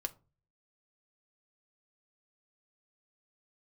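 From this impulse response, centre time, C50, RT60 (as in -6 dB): 4 ms, 21.0 dB, 0.35 s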